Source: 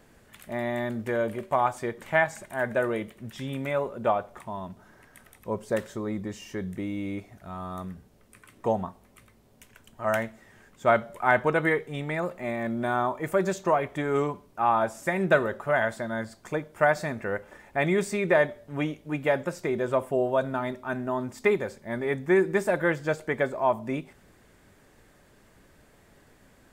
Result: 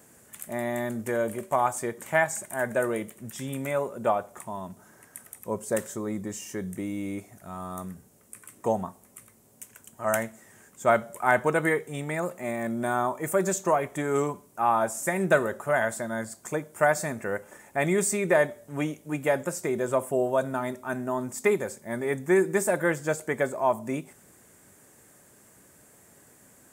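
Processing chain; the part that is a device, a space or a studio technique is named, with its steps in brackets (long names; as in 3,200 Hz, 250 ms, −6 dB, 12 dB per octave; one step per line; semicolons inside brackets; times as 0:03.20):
budget condenser microphone (high-pass filter 100 Hz; high shelf with overshoot 5,700 Hz +11 dB, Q 1.5)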